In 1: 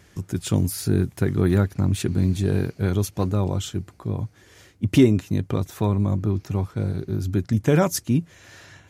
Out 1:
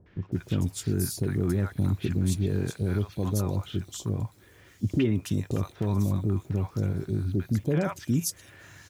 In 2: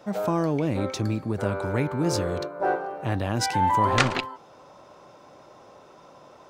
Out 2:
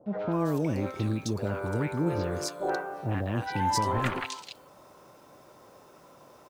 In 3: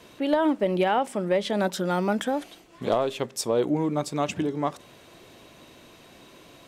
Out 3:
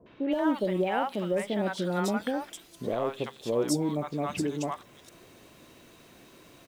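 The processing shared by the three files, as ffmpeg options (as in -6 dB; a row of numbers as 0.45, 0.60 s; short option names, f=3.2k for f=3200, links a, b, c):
-filter_complex "[0:a]alimiter=limit=-13.5dB:level=0:latency=1:release=63,acrusher=bits=9:mix=0:aa=0.000001,acrossover=split=750|3400[a][b][c];[b]adelay=60[d];[c]adelay=320[e];[a][d][e]amix=inputs=3:normalize=0,volume=-2.5dB"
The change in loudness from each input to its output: -5.5, -4.5, -4.0 LU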